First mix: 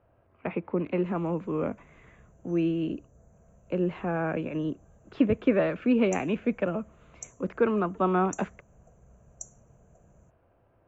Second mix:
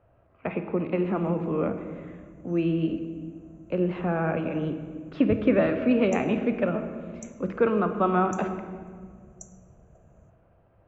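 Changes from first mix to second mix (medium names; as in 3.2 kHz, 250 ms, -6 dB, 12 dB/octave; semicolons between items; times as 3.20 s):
background: add treble shelf 4.5 kHz -8 dB; reverb: on, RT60 1.8 s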